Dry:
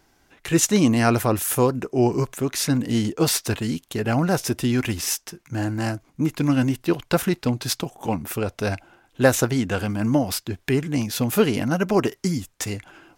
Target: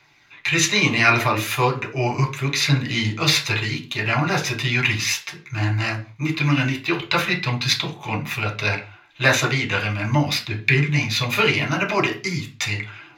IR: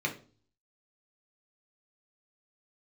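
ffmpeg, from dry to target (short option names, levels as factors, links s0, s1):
-filter_complex "[0:a]aphaser=in_gain=1:out_gain=1:delay=3.4:decay=0.26:speed=0.38:type=triangular,equalizer=f=250:t=o:w=1:g=-9,equalizer=f=500:t=o:w=1:g=-6,equalizer=f=1000:t=o:w=1:g=5,equalizer=f=2000:t=o:w=1:g=8,equalizer=f=4000:t=o:w=1:g=11,equalizer=f=8000:t=o:w=1:g=-4[s0];[1:a]atrim=start_sample=2205,afade=t=out:st=0.26:d=0.01,atrim=end_sample=11907[s1];[s0][s1]afir=irnorm=-1:irlink=0,volume=0.562"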